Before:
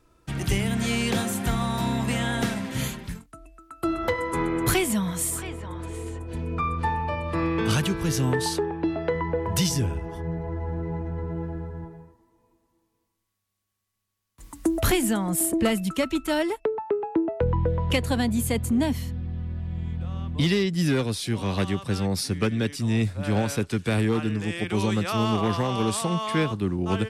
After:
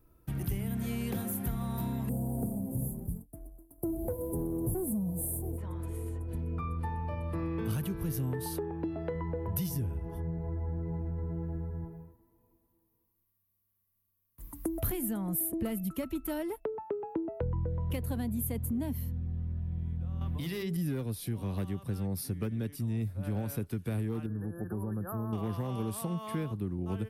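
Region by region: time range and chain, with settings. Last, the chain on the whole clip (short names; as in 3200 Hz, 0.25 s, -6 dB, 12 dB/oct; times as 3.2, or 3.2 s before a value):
2.09–5.58 CVSD 64 kbps + inverse Chebyshev band-stop 1300–5200 Hz + sample leveller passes 1
20.21–20.77 low shelf 490 Hz -9.5 dB + notches 50/100/150/200/250/300/350/400/450 Hz + fast leveller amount 100%
24.26–25.33 brick-wall FIR band-stop 1800–10000 Hz + compressor 2.5:1, threshold -26 dBFS
whole clip: EQ curve 110 Hz 0 dB, 3400 Hz -14 dB, 7600 Hz -14 dB, 13000 Hz +9 dB; compressor 2.5:1, threshold -33 dBFS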